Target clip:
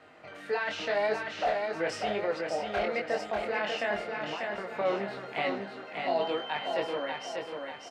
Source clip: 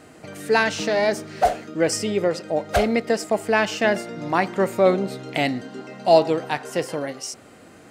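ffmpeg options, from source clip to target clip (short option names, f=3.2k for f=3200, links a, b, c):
-filter_complex "[0:a]acrossover=split=550 3900:gain=0.224 1 0.0708[a][b][c];[a][b][c]amix=inputs=3:normalize=0,alimiter=limit=-18.5dB:level=0:latency=1:release=10,asettb=1/sr,asplit=3[d][e][f];[d]atrim=end=4.164[g];[e]atrim=start=4.16:end=4.78,asetpts=PTS-STARTPTS,afade=t=in:d=0.004:c=qsin,afade=t=out:st=0.616:d=0.004:c=qsin,acompressor=threshold=-33dB:ratio=6[h];[f]atrim=start=4.776[i];[g][h]acrossfade=d=0.004:c1=hsin:c2=qsin[j];[j][i]acrossfade=d=0.004:c1=qsin:c2=hsin,flanger=delay=19:depth=6.3:speed=0.91,asettb=1/sr,asplit=3[k][l][m];[k]atrim=end=6.214[n];[l]atrim=start=6.21:end=6.73,asetpts=PTS-STARTPTS,afade=t=in:d=0.004:c=qsin,afade=t=out:st=0.516:d=0.004:c=qsin,aeval=exprs='val(0)+0.00891*sin(2*PI*3100*n/s)':c=same[o];[m]atrim=start=6.726[p];[n][o]acrossfade=d=0.004:c1=hsin:c2=qsin[q];[q][p]acrossfade=d=0.004:c1=qsin:c2=hsin,aecho=1:1:592|1184|1776|2368|2960|3552:0.596|0.268|0.121|0.0543|0.0244|0.011"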